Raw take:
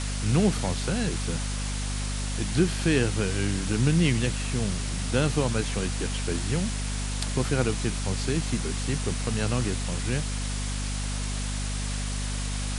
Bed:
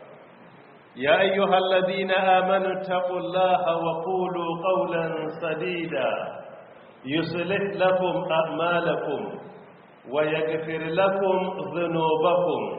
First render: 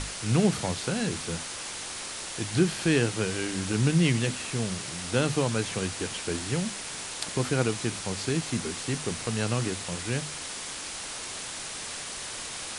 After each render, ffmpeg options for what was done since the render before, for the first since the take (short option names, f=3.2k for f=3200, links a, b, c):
-af "bandreject=f=50:t=h:w=6,bandreject=f=100:t=h:w=6,bandreject=f=150:t=h:w=6,bandreject=f=200:t=h:w=6,bandreject=f=250:t=h:w=6"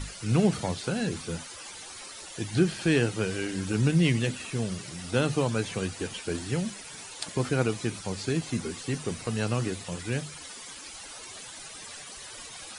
-af "afftdn=nr=13:nf=-38"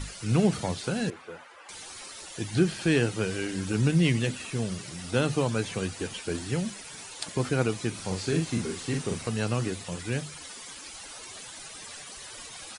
-filter_complex "[0:a]asettb=1/sr,asplit=3[a][b][c];[a]atrim=end=1.104[d];[b]atrim=start=1.1:end=1.69,asetpts=PTS-STARTPTS,afade=t=in:d=0.004:c=qsin,afade=t=out:st=0.586:d=0.004:c=qsin,acrossover=split=410 2400:gain=0.0891 1 0.0794[e][f][g];[e][f][g]amix=inputs=3:normalize=0[h];[c]atrim=start=1.686[i];[d][h]acrossfade=d=0.004:c1=hsin:c2=qsin[j];[j][i]acrossfade=d=0.004:c1=qsin:c2=hsin,asplit=3[k][l][m];[k]afade=t=out:st=7.97:d=0.02[n];[l]asplit=2[o][p];[p]adelay=43,volume=-4dB[q];[o][q]amix=inputs=2:normalize=0,afade=t=in:st=7.97:d=0.02,afade=t=out:st=9.28:d=0.02[r];[m]afade=t=in:st=9.28:d=0.02[s];[n][r][s]amix=inputs=3:normalize=0"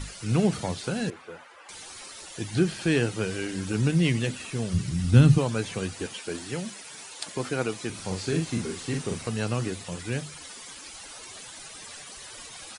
-filter_complex "[0:a]asplit=3[a][b][c];[a]afade=t=out:st=4.73:d=0.02[d];[b]asubboost=boost=10:cutoff=180,afade=t=in:st=4.73:d=0.02,afade=t=out:st=5.37:d=0.02[e];[c]afade=t=in:st=5.37:d=0.02[f];[d][e][f]amix=inputs=3:normalize=0,asettb=1/sr,asplit=3[g][h][i];[g]atrim=end=6.064[j];[h]atrim=start=6.06:end=7.9,asetpts=PTS-STARTPTS,afade=t=in:d=0.004:c=qsin,afade=t=out:st=1.836:d=0.004:c=qsin,highpass=f=250:p=1[k];[i]atrim=start=7.896[l];[j][k]acrossfade=d=0.004:c1=hsin:c2=qsin[m];[m][l]acrossfade=d=0.004:c1=qsin:c2=hsin"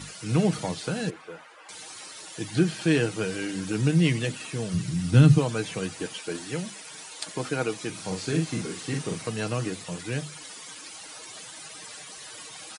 -af "highpass=110,aecho=1:1:6.4:0.37"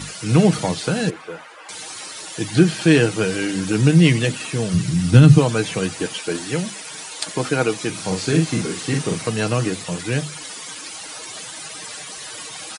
-af "alimiter=level_in=8.5dB:limit=-1dB:release=50:level=0:latency=1"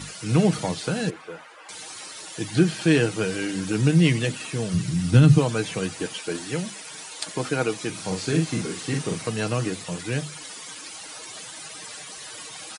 -af "volume=-5dB"